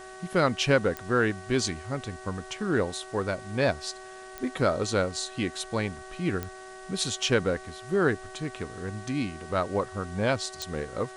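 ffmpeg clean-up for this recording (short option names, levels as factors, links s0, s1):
-af "adeclick=t=4,bandreject=f=377:t=h:w=4,bandreject=f=754:t=h:w=4,bandreject=f=1131:t=h:w=4,bandreject=f=1508:t=h:w=4,bandreject=f=1885:t=h:w=4,bandreject=f=630:w=30,afwtdn=0.0028"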